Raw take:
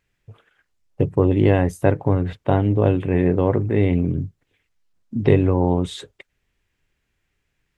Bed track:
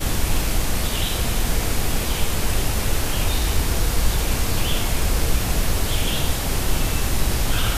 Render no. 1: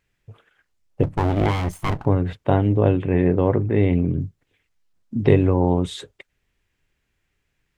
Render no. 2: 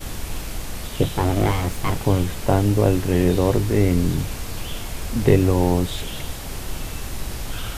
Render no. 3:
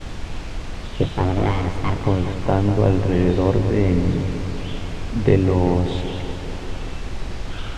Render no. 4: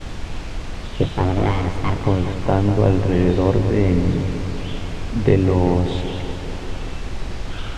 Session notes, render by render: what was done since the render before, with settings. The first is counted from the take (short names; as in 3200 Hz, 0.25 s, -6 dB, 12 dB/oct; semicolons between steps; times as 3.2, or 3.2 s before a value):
1.03–2.06 minimum comb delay 0.93 ms; 2.77–4.2 air absorption 69 m
add bed track -8.5 dB
air absorption 120 m; analogue delay 0.193 s, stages 4096, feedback 72%, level -10 dB
gain +1 dB; limiter -2 dBFS, peak gain reduction 1.5 dB